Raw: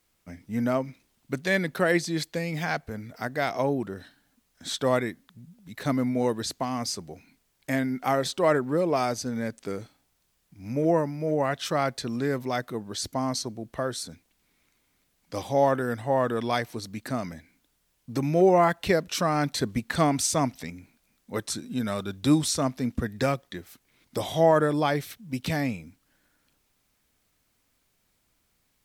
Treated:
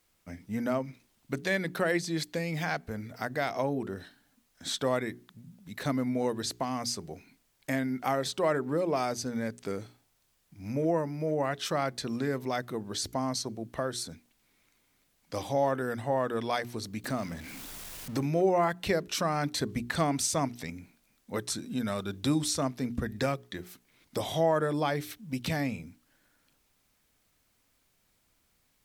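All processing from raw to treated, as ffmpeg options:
-filter_complex "[0:a]asettb=1/sr,asplit=3[s0][s1][s2];[s0]atrim=end=17.044[s3];[s1]atrim=start=17.04:end=18.25,asetpts=PTS-STARTPTS,afade=t=in:d=0.004:c=qsin,afade=t=out:st=1.206:d=0.004:c=qsin,aeval=exprs='val(0)+0.5*0.0075*sgn(val(0))':c=same,acompressor=mode=upward:threshold=0.0112:ratio=2.5:attack=3.2:release=140:knee=2.83:detection=peak[s4];[s2]atrim=start=18.246[s5];[s3][s4]acrossfade=d=0.004:c1=hsin:c2=qsin[s6];[s6][s5]acrossfade=d=0.004:c1=qsin:c2=hsin,bandreject=f=60:t=h:w=6,bandreject=f=120:t=h:w=6,bandreject=f=180:t=h:w=6,bandreject=f=240:t=h:w=6,bandreject=f=300:t=h:w=6,bandreject=f=360:t=h:w=6,bandreject=f=420:t=h:w=6,acompressor=threshold=0.0251:ratio=1.5"

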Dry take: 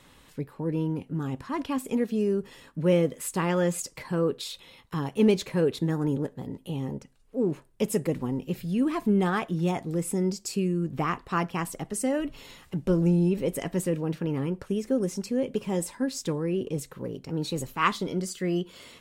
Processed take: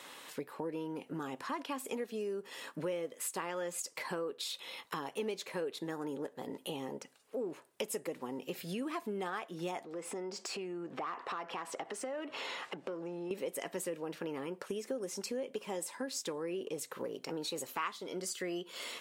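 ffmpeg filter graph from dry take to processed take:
-filter_complex "[0:a]asettb=1/sr,asplit=3[s0][s1][s2];[s0]atrim=end=9.844[s3];[s1]atrim=start=9.84:end=13.31,asetpts=PTS-STARTPTS,afade=t=in:d=0.004:c=qsin,afade=t=out:st=3.466:d=0.004:c=qsin,lowpass=9700,acompressor=threshold=0.0126:ratio=5:attack=3.2:release=140:knee=1:detection=peak,asplit=2[s4][s5];[s5]highpass=f=720:p=1,volume=6.31,asoftclip=type=tanh:threshold=0.0562[s6];[s4][s6]amix=inputs=2:normalize=0,lowpass=f=1200:p=1,volume=0.501[s7];[s2]atrim=start=13.306[s8];[s3][s7]acrossfade=d=0.004:c1=hsin:c2=qsin[s9];[s9][s8]acrossfade=d=0.004:c1=qsin:c2=hsin,highpass=450,acompressor=threshold=0.00631:ratio=5,volume=2.24"

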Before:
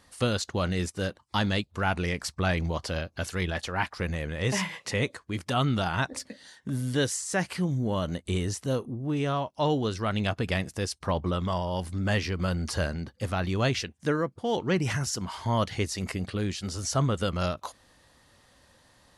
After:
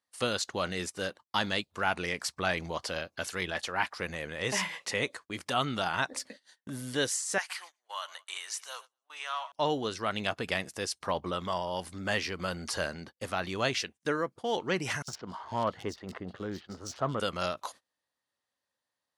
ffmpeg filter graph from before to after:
-filter_complex "[0:a]asettb=1/sr,asplit=3[s0][s1][s2];[s0]atrim=end=7.384[s3];[s1]atrim=start=7.38:end=9.52,asetpts=PTS-STARTPTS,afade=t=in:d=0.004:c=qsin,afade=t=out:st=2.136:d=0.004:c=qsin,highpass=f=900:w=0.5412,highpass=f=900:w=1.3066,aecho=1:1:115|230|345|460:0.126|0.0617|0.0302|0.0148,atrim=end_sample=94374[s4];[s2]atrim=start=9.516[s5];[s3][s4]acrossfade=d=0.004:c1=hsin:c2=qsin[s6];[s6][s5]acrossfade=d=0.004:c1=qsin:c2=hsin,asettb=1/sr,asplit=3[s7][s8][s9];[s7]atrim=end=15.024[s10];[s8]atrim=start=15.02:end=17.2,asetpts=PTS-STARTPTS,afade=t=in:d=0.004:c=qsin,afade=t=out:st=2.176:d=0.004:c=qsin,equalizer=f=2400:t=o:w=0.43:g=-12.5,adynamicsmooth=sensitivity=4:basefreq=1700,acrossover=split=3100[s11][s12];[s11]adelay=60[s13];[s13][s12]amix=inputs=2:normalize=0,atrim=end_sample=96138[s14];[s9]atrim=start=17.196[s15];[s10][s14]acrossfade=d=0.004:c1=hsin:c2=qsin[s16];[s16][s15]acrossfade=d=0.004:c1=qsin:c2=hsin,highpass=f=500:p=1,agate=range=0.0501:threshold=0.00398:ratio=16:detection=peak"

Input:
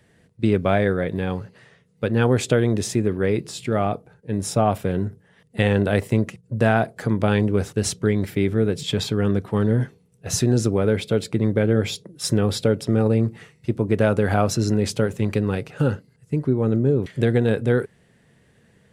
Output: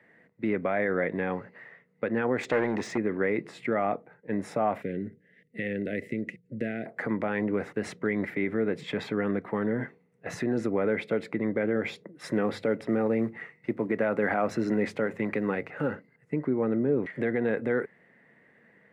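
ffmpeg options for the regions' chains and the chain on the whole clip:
-filter_complex "[0:a]asettb=1/sr,asplit=3[s0][s1][s2];[s0]atrim=end=2.434[s3];[s1]atrim=start=2.43:end=2.98,asetpts=PTS-STARTPTS,afade=t=in:d=0.004:c=qsin,afade=t=out:st=0.546:d=0.004:c=qsin,lowpass=7700,equalizer=f=6100:t=o:w=1.4:g=9,volume=8.91,asoftclip=hard,volume=0.112[s4];[s2]atrim=start=2.976[s5];[s3][s4]acrossfade=d=0.004:c1=hsin:c2=qsin[s6];[s6][s5]acrossfade=d=0.004:c1=qsin:c2=hsin,asettb=1/sr,asplit=3[s7][s8][s9];[s7]atrim=end=4.824[s10];[s8]atrim=start=4.82:end=6.86,asetpts=PTS-STARTPTS,afade=t=in:d=0.004:c=qsin,afade=t=out:st=2.036:d=0.004:c=qsin,acompressor=threshold=0.0891:ratio=2.5:attack=3.2:release=140:knee=1:detection=peak,asuperstop=centerf=1000:order=4:qfactor=0.58[s11];[s9]atrim=start=6.856[s12];[s10][s11]acrossfade=d=0.004:c1=hsin:c2=qsin[s13];[s13][s12]acrossfade=d=0.004:c1=qsin:c2=hsin,asettb=1/sr,asplit=3[s14][s15][s16];[s14]atrim=end=12.314[s17];[s15]atrim=start=12.31:end=15.91,asetpts=PTS-STARTPTS,afade=t=in:d=0.004:c=qsin,afade=t=out:st=3.596:d=0.004:c=qsin,highpass=47,bandreject=f=50:t=h:w=6,bandreject=f=100:t=h:w=6,acrusher=bits=9:mode=log:mix=0:aa=0.000001[s18];[s16]atrim=start=15.906[s19];[s17][s18]acrossfade=d=0.004:c1=hsin:c2=qsin[s20];[s20][s19]acrossfade=d=0.004:c1=qsin:c2=hsin,equalizer=f=400:t=o:w=0.33:g=-4,equalizer=f=2000:t=o:w=0.33:g=11,equalizer=f=3150:t=o:w=0.33:g=-4,alimiter=limit=0.224:level=0:latency=1:release=87,acrossover=split=200 2500:gain=0.0708 1 0.0794[s21][s22][s23];[s21][s22][s23]amix=inputs=3:normalize=0"

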